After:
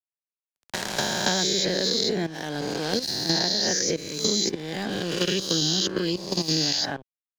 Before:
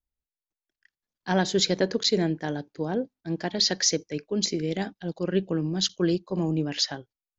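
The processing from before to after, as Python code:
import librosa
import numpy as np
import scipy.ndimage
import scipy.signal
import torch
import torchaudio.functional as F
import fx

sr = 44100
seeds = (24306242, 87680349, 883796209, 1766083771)

y = fx.spec_swells(x, sr, rise_s=1.25)
y = fx.high_shelf(y, sr, hz=3800.0, db=6.5)
y = fx.level_steps(y, sr, step_db=12)
y = np.sign(y) * np.maximum(np.abs(y) - 10.0 ** (-48.5 / 20.0), 0.0)
y = fx.band_squash(y, sr, depth_pct=100)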